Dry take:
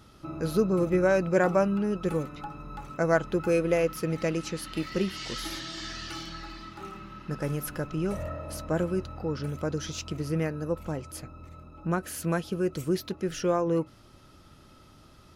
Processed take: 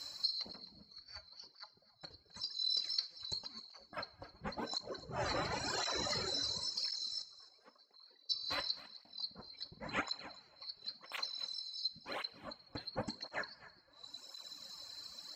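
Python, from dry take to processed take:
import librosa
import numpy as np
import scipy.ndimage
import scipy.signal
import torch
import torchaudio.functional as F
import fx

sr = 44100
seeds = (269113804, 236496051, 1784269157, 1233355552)

y = fx.band_swap(x, sr, width_hz=4000)
y = fx.ladder_bandpass(y, sr, hz=480.0, resonance_pct=30, at=(7.22, 8.29), fade=0.02)
y = fx.dereverb_blind(y, sr, rt60_s=1.5)
y = fx.over_compress(y, sr, threshold_db=-28.0, ratio=-0.5)
y = fx.env_lowpass_down(y, sr, base_hz=310.0, full_db=-26.0)
y = y + 10.0 ** (-17.0 / 20.0) * np.pad(y, (int(263 * sr / 1000.0), 0))[:len(y)]
y = fx.rev_double_slope(y, sr, seeds[0], early_s=0.28, late_s=2.2, knee_db=-19, drr_db=9.0)
y = fx.flanger_cancel(y, sr, hz=0.94, depth_ms=5.2)
y = y * 10.0 ** (7.0 / 20.0)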